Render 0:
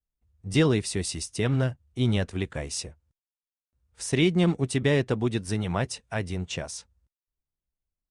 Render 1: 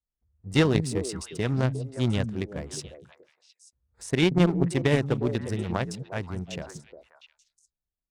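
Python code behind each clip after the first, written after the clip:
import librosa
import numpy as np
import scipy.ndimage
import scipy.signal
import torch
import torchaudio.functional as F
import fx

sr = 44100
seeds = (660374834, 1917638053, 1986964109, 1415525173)

y = fx.wiener(x, sr, points=15)
y = fx.echo_stepped(y, sr, ms=177, hz=170.0, octaves=1.4, feedback_pct=70, wet_db=-3)
y = fx.cheby_harmonics(y, sr, harmonics=(3,), levels_db=(-14,), full_scale_db=-10.0)
y = y * 10.0 ** (4.5 / 20.0)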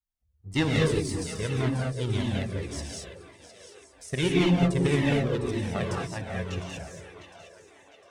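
y = fx.echo_split(x, sr, split_hz=380.0, low_ms=209, high_ms=705, feedback_pct=52, wet_db=-13.5)
y = fx.rev_gated(y, sr, seeds[0], gate_ms=250, shape='rising', drr_db=-2.5)
y = fx.comb_cascade(y, sr, direction='falling', hz=1.8)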